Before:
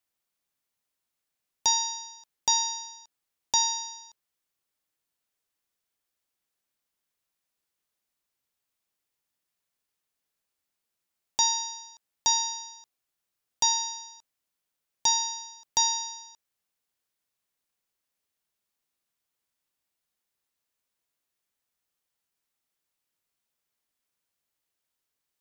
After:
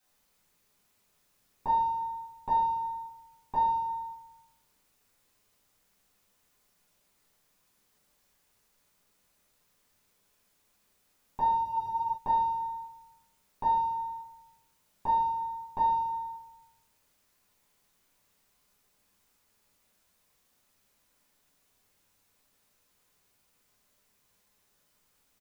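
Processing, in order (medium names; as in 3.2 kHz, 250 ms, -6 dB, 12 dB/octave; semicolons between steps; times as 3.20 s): low-pass 1.4 kHz 24 dB/octave; bass shelf 240 Hz +7.5 dB; in parallel at -0.5 dB: peak limiter -33 dBFS, peak gain reduction 11.5 dB; on the sum: word length cut 12-bit, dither triangular; delay 330 ms -22 dB; reverberation RT60 0.90 s, pre-delay 5 ms, DRR -7.5 dB; spectral freeze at 11.66 s, 0.50 s; trim -9 dB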